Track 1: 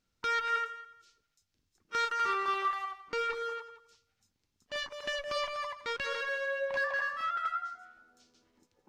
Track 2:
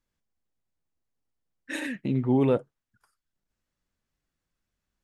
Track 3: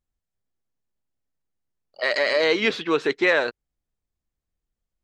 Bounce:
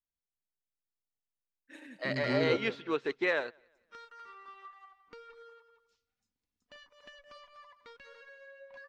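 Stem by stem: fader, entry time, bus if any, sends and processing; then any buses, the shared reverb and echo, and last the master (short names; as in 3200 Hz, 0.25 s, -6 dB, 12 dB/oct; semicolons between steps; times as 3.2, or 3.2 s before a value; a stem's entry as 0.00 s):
+1.5 dB, 2.00 s, no send, no echo send, comb 4.1 ms, depth 41%; compressor 3:1, threshold -46 dBFS, peak gain reduction 15 dB
-9.0 dB, 0.00 s, no send, echo send -8.5 dB, dry
-8.5 dB, 0.00 s, no send, echo send -21.5 dB, dry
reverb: off
echo: feedback echo 0.178 s, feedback 38%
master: high shelf 6500 Hz -9 dB; upward expander 1.5:1, over -49 dBFS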